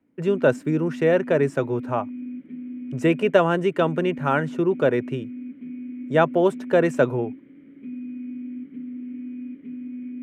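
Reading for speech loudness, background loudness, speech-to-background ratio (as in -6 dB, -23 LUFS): -22.0 LUFS, -35.5 LUFS, 13.5 dB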